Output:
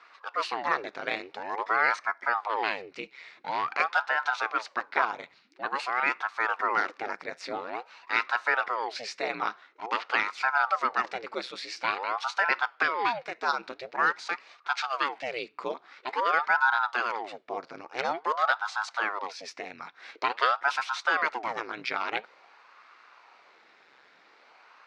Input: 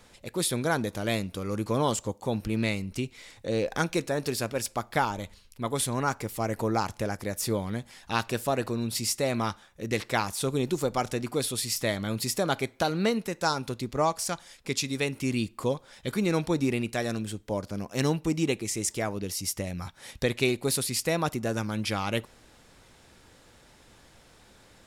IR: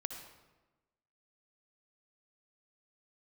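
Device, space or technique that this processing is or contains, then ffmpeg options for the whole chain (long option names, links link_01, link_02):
voice changer toy: -af "aeval=exprs='val(0)*sin(2*PI*630*n/s+630*0.9/0.48*sin(2*PI*0.48*n/s))':channel_layout=same,highpass=590,equalizer=frequency=610:width_type=q:width=4:gain=-4,equalizer=frequency=1400:width_type=q:width=4:gain=4,equalizer=frequency=2200:width_type=q:width=4:gain=4,equalizer=frequency=3200:width_type=q:width=4:gain=-7,lowpass=frequency=4200:width=0.5412,lowpass=frequency=4200:width=1.3066,volume=4dB"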